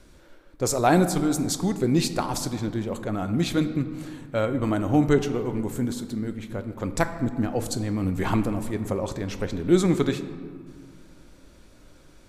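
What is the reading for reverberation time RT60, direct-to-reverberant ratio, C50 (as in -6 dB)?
1.9 s, 9.0 dB, 11.0 dB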